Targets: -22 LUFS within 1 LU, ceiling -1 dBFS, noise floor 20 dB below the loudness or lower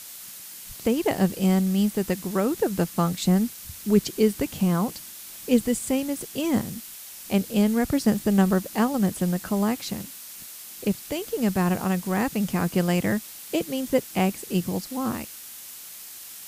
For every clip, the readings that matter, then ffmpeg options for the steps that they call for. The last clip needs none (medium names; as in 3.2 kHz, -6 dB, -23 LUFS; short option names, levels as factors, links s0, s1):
noise floor -42 dBFS; noise floor target -45 dBFS; loudness -25.0 LUFS; peak level -6.0 dBFS; loudness target -22.0 LUFS
-> -af "afftdn=nr=6:nf=-42"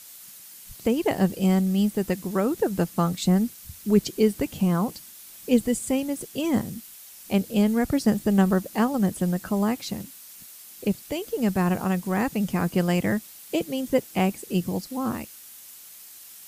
noise floor -46 dBFS; loudness -25.0 LUFS; peak level -6.5 dBFS; loudness target -22.0 LUFS
-> -af "volume=1.41"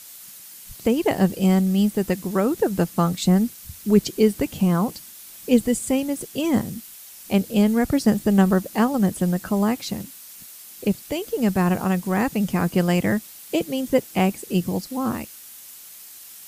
loudness -22.0 LUFS; peak level -3.5 dBFS; noise floor -43 dBFS